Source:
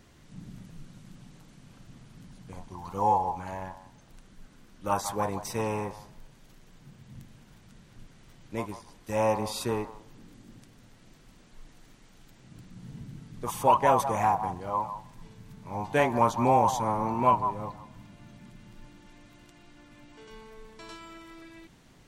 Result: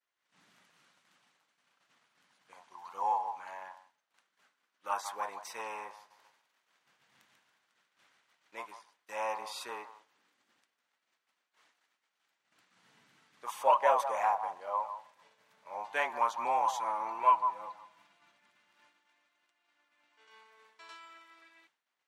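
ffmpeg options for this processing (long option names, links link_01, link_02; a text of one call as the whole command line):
ffmpeg -i in.wav -filter_complex "[0:a]asettb=1/sr,asplit=3[link_01][link_02][link_03];[link_01]atrim=end=5.964[link_04];[link_02]atrim=start=5.96:end=8.54,asetpts=PTS-STARTPTS,afade=type=in:duration=0.004:curve=qsin,afade=type=out:start_time=2.576:duration=0.004:curve=qsin,aecho=1:1:141|282|423|564|705|846:0.562|0.259|0.119|0.0547|0.0252|0.0116,atrim=end_sample=113778[link_05];[link_03]atrim=start=8.536[link_06];[link_04][link_05]acrossfade=duration=0.004:curve1=hsin:curve2=qsin[link_07];[link_07][link_06]acrossfade=duration=0.004:curve1=qsin:curve2=hsin,asettb=1/sr,asplit=3[link_08][link_09][link_10];[link_08]atrim=end=13.584[link_11];[link_09]atrim=start=13.58:end=15.9,asetpts=PTS-STARTPTS,afade=type=in:duration=0.004:curve=qsin,afade=type=out:start_time=2.316:duration=0.004:curve=qsin,equalizer=frequency=570:width_type=o:width=0.45:gain=11[link_12];[link_10]atrim=start=15.896[link_13];[link_11][link_12]acrossfade=duration=0.004:curve1=hsin:curve2=qsin[link_14];[link_14][link_13]acrossfade=duration=0.004:curve1=qsin:curve2=hsin,asettb=1/sr,asplit=3[link_15][link_16][link_17];[link_15]atrim=end=16.614[link_18];[link_16]atrim=start=16.61:end=18.32,asetpts=PTS-STARTPTS,afade=type=in:duration=0.004:curve=qsin,afade=type=out:start_time=1.706:duration=0.004:curve=qsin,aecho=1:1:6:0.58,atrim=end_sample=75411[link_19];[link_17]atrim=start=18.316[link_20];[link_18][link_19]acrossfade=duration=0.004:curve1=hsin:curve2=qsin[link_21];[link_21][link_20]acrossfade=duration=0.004:curve1=qsin:curve2=hsin,agate=range=-33dB:threshold=-44dB:ratio=3:detection=peak,highpass=1100,highshelf=frequency=4200:gain=-12" out.wav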